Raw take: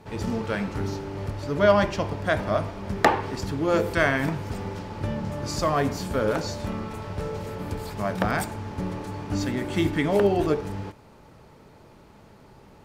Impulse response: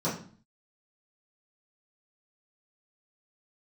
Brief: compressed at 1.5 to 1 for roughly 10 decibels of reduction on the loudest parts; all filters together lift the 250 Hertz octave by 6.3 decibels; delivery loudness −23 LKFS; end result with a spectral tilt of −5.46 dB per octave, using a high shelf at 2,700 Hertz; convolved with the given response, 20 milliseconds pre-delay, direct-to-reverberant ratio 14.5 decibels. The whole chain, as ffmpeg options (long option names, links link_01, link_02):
-filter_complex "[0:a]equalizer=frequency=250:width_type=o:gain=8.5,highshelf=frequency=2700:gain=9,acompressor=threshold=-39dB:ratio=1.5,asplit=2[link_01][link_02];[1:a]atrim=start_sample=2205,adelay=20[link_03];[link_02][link_03]afir=irnorm=-1:irlink=0,volume=-23.5dB[link_04];[link_01][link_04]amix=inputs=2:normalize=0,volume=7dB"